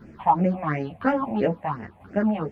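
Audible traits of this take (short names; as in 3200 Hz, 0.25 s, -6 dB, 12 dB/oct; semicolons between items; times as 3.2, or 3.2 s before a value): phasing stages 6, 2.9 Hz, lowest notch 350–1100 Hz; tremolo saw down 1 Hz, depth 50%; a shimmering, thickened sound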